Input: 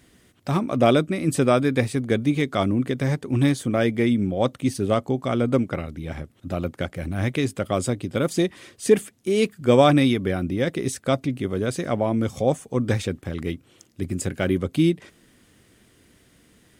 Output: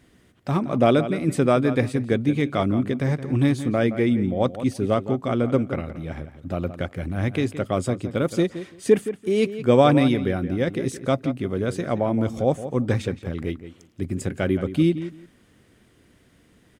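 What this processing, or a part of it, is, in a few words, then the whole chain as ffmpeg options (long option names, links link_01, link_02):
behind a face mask: -filter_complex "[0:a]highshelf=frequency=3500:gain=-7.5,asplit=2[link_01][link_02];[link_02]adelay=170,lowpass=frequency=3600:poles=1,volume=-12dB,asplit=2[link_03][link_04];[link_04]adelay=170,lowpass=frequency=3600:poles=1,volume=0.18[link_05];[link_01][link_03][link_05]amix=inputs=3:normalize=0"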